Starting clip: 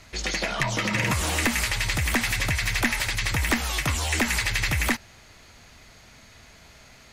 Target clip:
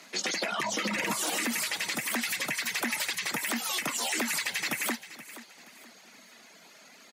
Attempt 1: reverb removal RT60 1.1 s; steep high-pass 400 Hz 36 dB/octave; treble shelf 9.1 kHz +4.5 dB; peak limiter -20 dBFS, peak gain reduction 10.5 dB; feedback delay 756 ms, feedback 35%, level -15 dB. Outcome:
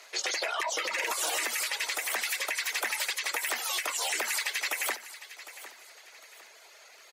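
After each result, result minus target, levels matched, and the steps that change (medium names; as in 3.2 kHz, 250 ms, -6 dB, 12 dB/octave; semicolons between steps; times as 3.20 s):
250 Hz band -16.5 dB; echo 280 ms late
change: steep high-pass 190 Hz 36 dB/octave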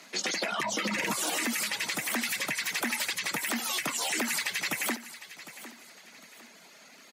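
echo 280 ms late
change: feedback delay 476 ms, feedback 35%, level -15 dB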